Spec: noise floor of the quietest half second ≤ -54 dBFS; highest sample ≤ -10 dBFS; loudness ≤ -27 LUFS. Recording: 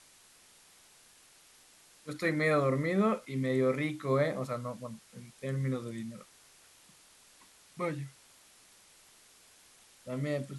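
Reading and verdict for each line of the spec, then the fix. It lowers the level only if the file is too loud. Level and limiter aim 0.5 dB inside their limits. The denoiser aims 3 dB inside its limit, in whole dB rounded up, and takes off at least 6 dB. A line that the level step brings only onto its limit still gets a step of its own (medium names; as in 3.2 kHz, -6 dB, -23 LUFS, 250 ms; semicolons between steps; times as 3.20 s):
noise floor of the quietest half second -60 dBFS: pass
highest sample -16.0 dBFS: pass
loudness -32.5 LUFS: pass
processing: none needed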